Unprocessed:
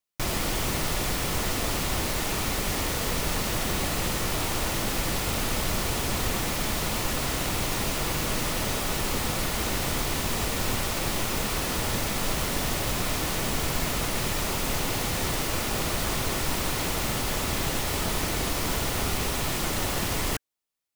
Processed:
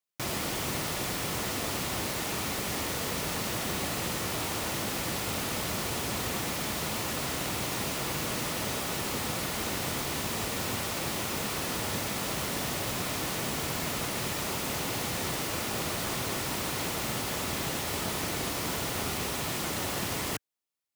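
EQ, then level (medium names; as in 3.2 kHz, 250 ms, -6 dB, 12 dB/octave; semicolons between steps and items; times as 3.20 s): high-pass 94 Hz 12 dB/octave; -3.5 dB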